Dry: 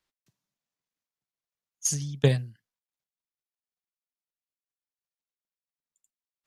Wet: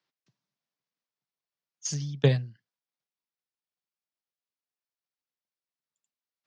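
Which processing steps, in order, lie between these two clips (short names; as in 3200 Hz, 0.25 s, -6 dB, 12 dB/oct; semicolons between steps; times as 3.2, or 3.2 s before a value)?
Chebyshev band-pass 120–5400 Hz, order 3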